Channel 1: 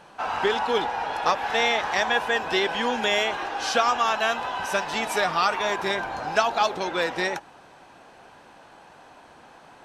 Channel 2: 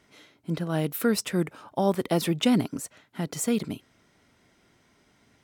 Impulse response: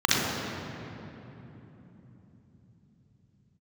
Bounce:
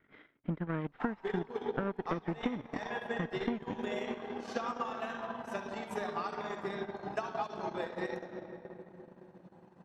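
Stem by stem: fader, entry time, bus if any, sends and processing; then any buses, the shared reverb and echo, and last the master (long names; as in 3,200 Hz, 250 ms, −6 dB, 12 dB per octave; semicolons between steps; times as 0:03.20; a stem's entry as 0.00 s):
−17.0 dB, 0.80 s, send −14.5 dB, tilt shelving filter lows +7 dB, about 660 Hz; reverb reduction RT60 1.4 s
−3.5 dB, 0.00 s, no send, lower of the sound and its delayed copy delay 0.56 ms; low-pass filter 2,400 Hz 24 dB per octave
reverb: on, RT60 3.5 s, pre-delay 35 ms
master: low-shelf EQ 150 Hz −8 dB; transient designer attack +8 dB, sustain −12 dB; downward compressor 12 to 1, threshold −30 dBFS, peak gain reduction 15 dB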